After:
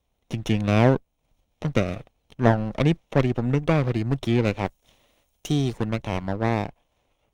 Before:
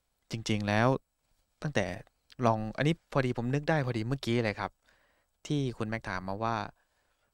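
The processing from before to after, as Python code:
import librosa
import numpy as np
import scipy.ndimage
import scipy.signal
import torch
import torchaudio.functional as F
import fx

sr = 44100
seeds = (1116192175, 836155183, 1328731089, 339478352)

y = fx.lower_of_two(x, sr, delay_ms=0.32)
y = fx.high_shelf(y, sr, hz=3700.0, db=fx.steps((0.0, -11.5), (4.65, 2.5), (5.77, -10.5)))
y = F.gain(torch.from_numpy(y), 7.5).numpy()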